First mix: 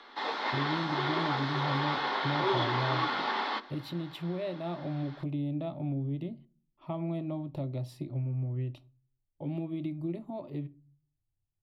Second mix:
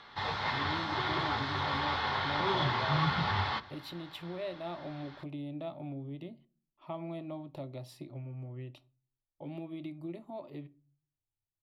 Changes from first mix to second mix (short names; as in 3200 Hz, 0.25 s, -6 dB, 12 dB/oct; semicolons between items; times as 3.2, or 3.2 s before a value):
background: remove steep high-pass 250 Hz 48 dB/oct; master: add low shelf 310 Hz -12 dB